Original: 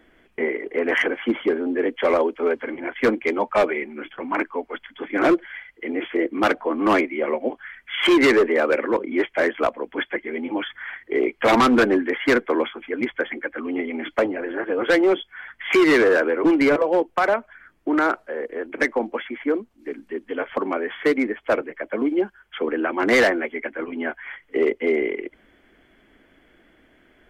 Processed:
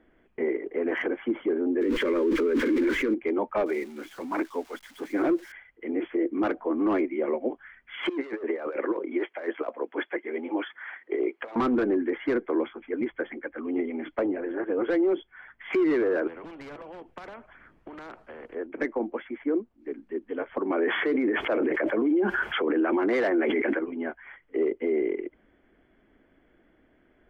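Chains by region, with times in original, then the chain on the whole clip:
1.81–3.14 zero-crossing step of -28.5 dBFS + fixed phaser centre 300 Hz, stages 4 + fast leveller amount 100%
3.66–5.52 switching spikes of -25 dBFS + bell 6100 Hz +2 dB 2.4 oct
8.09–11.56 HPF 390 Hz + negative-ratio compressor -24 dBFS, ratio -0.5
16.27–18.55 compressor 10:1, threshold -25 dBFS + spectral compressor 2:1
20.7–23.79 HPF 300 Hz 6 dB/oct + fast leveller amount 100%
whole clip: LPF 1100 Hz 6 dB/oct; dynamic EQ 340 Hz, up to +7 dB, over -33 dBFS, Q 2.7; limiter -13.5 dBFS; gain -4.5 dB

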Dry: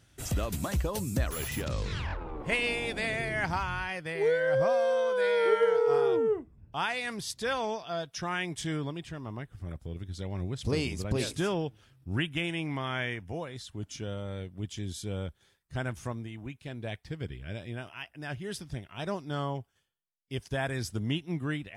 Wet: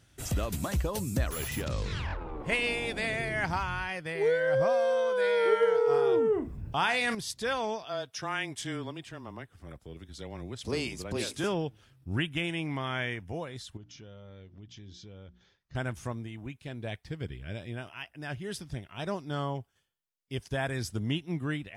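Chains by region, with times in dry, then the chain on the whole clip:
6.07–7.15 doubler 41 ms -14 dB + fast leveller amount 50%
7.85–11.44 HPF 280 Hz 6 dB/oct + frequency shift -15 Hz
13.77–15.75 steep low-pass 6200 Hz 48 dB/oct + notches 60/120/180/240/300/360 Hz + compressor 3:1, threshold -48 dBFS
whole clip: dry

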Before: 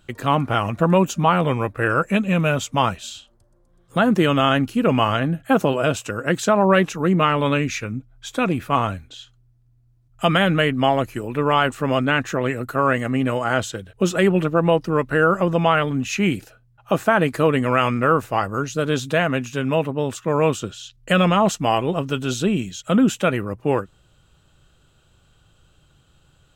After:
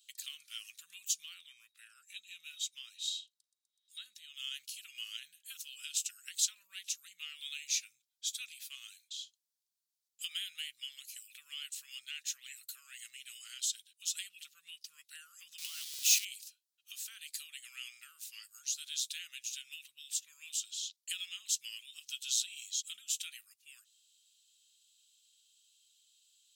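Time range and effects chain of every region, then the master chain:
1.34–4.34 high shelf 4000 Hz -8 dB + small resonant body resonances 330/3800 Hz, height 16 dB, ringing for 40 ms
15.58–16.25 zero-crossing step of -20 dBFS + bell 1000 Hz +9.5 dB 0.75 oct
whole clip: compressor, threshold -18 dBFS; inverse Chebyshev high-pass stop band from 850 Hz, stop band 70 dB; gain +1 dB

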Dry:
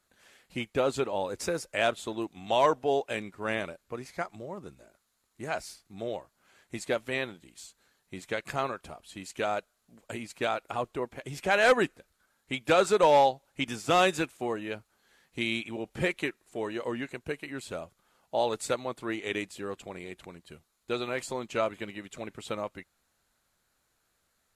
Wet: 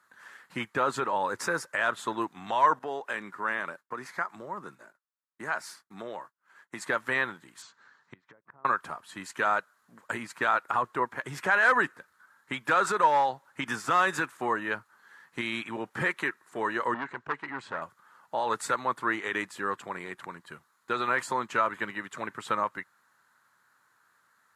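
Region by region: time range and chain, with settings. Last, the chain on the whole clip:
2.79–6.82 HPF 150 Hz + expander -57 dBFS + compressor 2:1, threshold -38 dBFS
7.62–8.65 treble ducked by the level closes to 550 Hz, closed at -31 dBFS + LPF 6300 Hz 24 dB/oct + flipped gate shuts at -36 dBFS, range -26 dB
16.94–17.82 air absorption 120 m + core saturation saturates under 1600 Hz
whole clip: limiter -22.5 dBFS; HPF 110 Hz 24 dB/oct; band shelf 1300 Hz +13.5 dB 1.3 oct

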